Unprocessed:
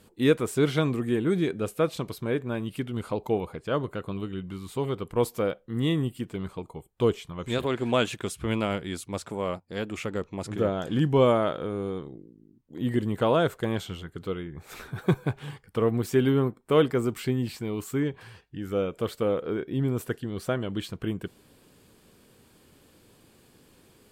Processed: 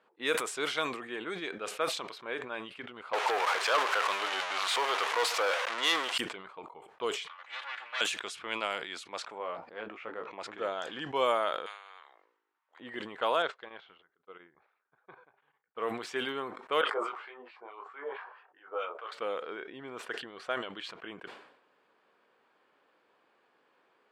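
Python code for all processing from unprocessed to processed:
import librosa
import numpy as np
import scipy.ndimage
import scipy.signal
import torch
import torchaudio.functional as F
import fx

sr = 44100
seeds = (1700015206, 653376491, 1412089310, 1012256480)

y = fx.chain(x, sr, fx.zero_step(step_db=-30.0),
    fx.bandpass_edges(low_hz=590.0, high_hz=3900.0),
    fx.leveller(passes=3), at=(3.13, 6.18))
y = fx.chain(y, sr, fx.lower_of_two(delay_ms=3.5),
    fx.highpass(hz=1500.0, slope=12),
    fx.high_shelf(hz=5200.0, db=-9.5), at=(7.27, 8.01))
y = fx.chain(y, sr, fx.lowpass(hz=1100.0, slope=6),
    fx.doubler(ms=18.0, db=-6.5), at=(9.38, 10.31))
y = fx.chain(y, sr, fx.highpass(hz=860.0, slope=24),
    fx.spectral_comp(ratio=2.0), at=(11.66, 12.8))
y = fx.chain(y, sr, fx.lowpass(hz=4700.0, slope=24),
    fx.chopper(hz=3.5, depth_pct=65, duty_pct=35),
    fx.upward_expand(threshold_db=-47.0, expansion=2.5), at=(13.42, 15.8))
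y = fx.chain(y, sr, fx.band_shelf(hz=680.0, db=11.0, octaves=2.3),
    fx.filter_lfo_bandpass(shape='sine', hz=4.6, low_hz=600.0, high_hz=2800.0, q=1.3),
    fx.detune_double(cents=21), at=(16.81, 19.12))
y = scipy.signal.sosfilt(scipy.signal.butter(2, 830.0, 'highpass', fs=sr, output='sos'), y)
y = fx.env_lowpass(y, sr, base_hz=1500.0, full_db=-27.5)
y = fx.sustainer(y, sr, db_per_s=72.0)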